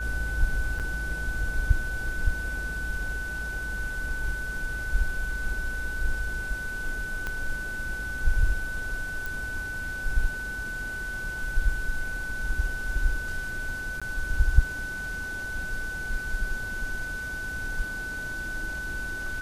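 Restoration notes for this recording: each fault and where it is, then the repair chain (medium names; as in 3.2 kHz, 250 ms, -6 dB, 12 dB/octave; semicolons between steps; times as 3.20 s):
whine 1.5 kHz -32 dBFS
0.79–0.80 s: dropout 7.7 ms
7.27 s: pop -18 dBFS
9.26 s: pop
14.00–14.02 s: dropout 16 ms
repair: de-click; band-stop 1.5 kHz, Q 30; interpolate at 0.79 s, 7.7 ms; interpolate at 14.00 s, 16 ms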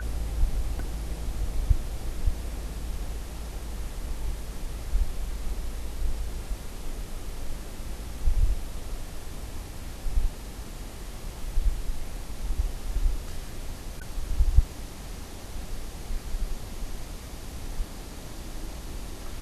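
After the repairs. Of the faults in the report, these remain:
7.27 s: pop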